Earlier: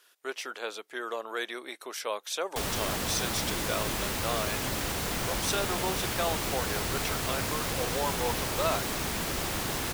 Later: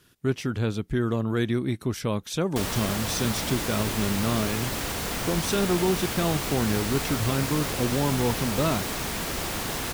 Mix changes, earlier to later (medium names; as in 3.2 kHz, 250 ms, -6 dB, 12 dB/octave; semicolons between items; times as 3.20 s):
speech: remove high-pass 520 Hz 24 dB/octave; reverb: on, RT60 1.5 s